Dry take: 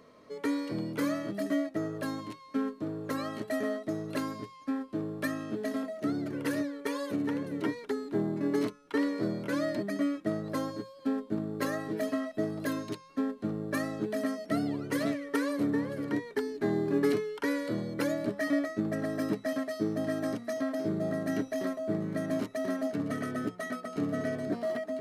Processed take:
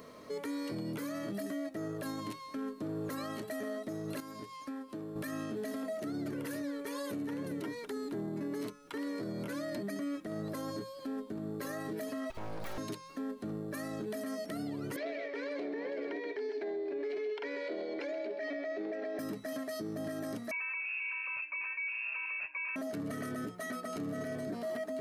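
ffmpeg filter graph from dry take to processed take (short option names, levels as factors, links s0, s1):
-filter_complex "[0:a]asettb=1/sr,asplit=3[s0][s1][s2];[s0]atrim=end=4.204[s3];[s1]atrim=start=4.2:end=5.16,asetpts=PTS-STARTPTS,afade=t=in:d=0.004:c=qsin,afade=t=out:st=0.956:d=0.004:c=qsin,lowshelf=f=130:g=-7.5,acompressor=threshold=0.00355:ratio=2.5:attack=3.2:release=140:knee=1:detection=peak[s4];[s2]atrim=start=5.156[s5];[s3][s4]acrossfade=d=0.004:c1=hsin:c2=qsin[s6];[s6][s5]acrossfade=d=0.004:c1=qsin:c2=hsin,asettb=1/sr,asplit=3[s7][s8][s9];[s7]atrim=end=12.304[s10];[s8]atrim=start=12.3:end=12.78,asetpts=PTS-STARTPTS,afade=t=in:d=0.004:c=qsin,afade=t=out:st=0.476:d=0.004:c=qsin,aeval=exprs='abs(val(0))':c=same,acompressor=mode=upward:threshold=0.00891:ratio=2.5:attack=3.2:release=140:knee=2.83:detection=peak,equalizer=f=12000:w=0.52:g=-9.5[s11];[s9]atrim=start=12.776[s12];[s10][s11]acrossfade=d=0.004:c1=hsin:c2=qsin[s13];[s13][s12]acrossfade=d=0.004:c1=qsin:c2=hsin,asettb=1/sr,asplit=3[s14][s15][s16];[s14]atrim=end=14.964[s17];[s15]atrim=start=14.96:end=19.19,asetpts=PTS-STARTPTS,afade=t=in:d=0.004:c=qsin,afade=t=out:st=4.226:d=0.004:c=qsin,highpass=f=330:w=0.5412,highpass=f=330:w=1.3066,equalizer=f=400:t=q:w=4:g=8,equalizer=f=670:t=q:w=4:g=8,equalizer=f=1200:t=q:w=4:g=-8,equalizer=f=2300:t=q:w=4:g=9,lowpass=f=4600:w=0.5412,lowpass=f=4600:w=1.3066,aecho=1:1:128:0.251,atrim=end_sample=186543[s18];[s16]atrim=start=19.186[s19];[s17][s18]acrossfade=d=0.004:c1=hsin:c2=qsin[s20];[s20][s19]acrossfade=d=0.004:c1=qsin:c2=hsin,asettb=1/sr,asplit=3[s21][s22][s23];[s21]atrim=end=20.514[s24];[s22]atrim=start=20.51:end=22.76,asetpts=PTS-STARTPTS,afade=t=in:d=0.004:c=qsin,afade=t=out:st=2.246:d=0.004:c=qsin,highpass=230,lowpass=f=2500:t=q:w=0.5098,lowpass=f=2500:t=q:w=0.6013,lowpass=f=2500:t=q:w=0.9,lowpass=f=2500:t=q:w=2.563,afreqshift=-2900[s25];[s23]atrim=start=22.756[s26];[s24][s25]acrossfade=d=0.004:c1=hsin:c2=qsin[s27];[s27][s26]acrossfade=d=0.004:c1=qsin:c2=hsin,highshelf=f=8500:g=11.5,acompressor=threshold=0.01:ratio=2,alimiter=level_in=3.98:limit=0.0631:level=0:latency=1:release=30,volume=0.251,volume=1.78"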